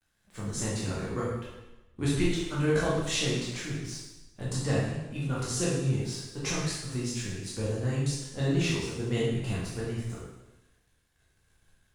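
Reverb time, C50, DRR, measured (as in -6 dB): 1.0 s, 0.0 dB, -7.0 dB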